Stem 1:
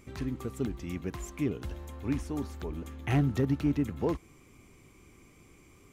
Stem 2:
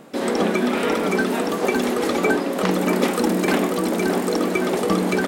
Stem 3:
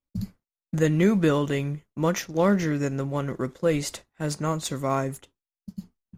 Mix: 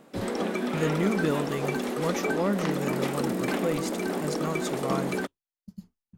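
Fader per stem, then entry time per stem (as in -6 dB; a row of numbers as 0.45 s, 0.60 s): mute, -9.0 dB, -6.0 dB; mute, 0.00 s, 0.00 s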